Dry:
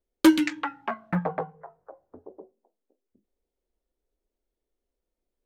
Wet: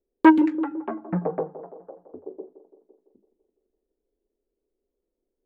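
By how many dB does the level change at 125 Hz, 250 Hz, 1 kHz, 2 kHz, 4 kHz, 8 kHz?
+0.5 dB, +3.5 dB, +6.5 dB, +1.5 dB, under -10 dB, n/a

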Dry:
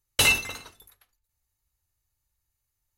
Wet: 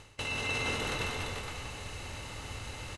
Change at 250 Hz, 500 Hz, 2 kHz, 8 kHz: +1.5, +1.0, -7.0, -11.5 dB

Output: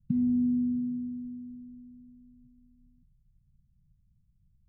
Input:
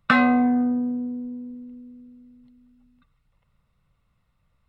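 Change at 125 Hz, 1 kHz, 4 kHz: +1.5 dB, under -40 dB, n/a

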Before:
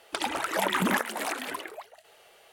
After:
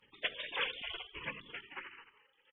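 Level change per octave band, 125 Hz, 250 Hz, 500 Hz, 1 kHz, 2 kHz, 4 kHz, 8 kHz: -19.5 dB, -24.5 dB, -15.0 dB, -18.0 dB, -8.5 dB, -4.0 dB, under -40 dB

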